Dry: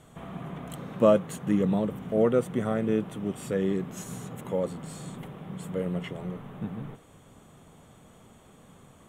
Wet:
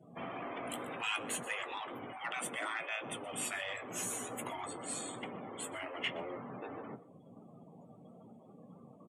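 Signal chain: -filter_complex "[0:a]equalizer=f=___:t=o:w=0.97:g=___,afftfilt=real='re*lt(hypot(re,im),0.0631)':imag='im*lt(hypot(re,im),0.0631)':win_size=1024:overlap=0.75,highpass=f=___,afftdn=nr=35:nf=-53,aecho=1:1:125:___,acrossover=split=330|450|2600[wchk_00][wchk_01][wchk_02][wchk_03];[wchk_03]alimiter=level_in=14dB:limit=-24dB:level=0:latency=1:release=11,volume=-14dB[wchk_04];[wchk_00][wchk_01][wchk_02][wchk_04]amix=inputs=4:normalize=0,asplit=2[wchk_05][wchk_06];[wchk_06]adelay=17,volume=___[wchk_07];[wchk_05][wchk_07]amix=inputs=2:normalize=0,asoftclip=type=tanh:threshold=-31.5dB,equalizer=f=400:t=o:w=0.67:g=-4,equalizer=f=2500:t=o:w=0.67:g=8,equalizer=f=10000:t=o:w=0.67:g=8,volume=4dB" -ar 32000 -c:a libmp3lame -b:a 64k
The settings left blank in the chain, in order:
1200, -2, 190, 0.0794, -12dB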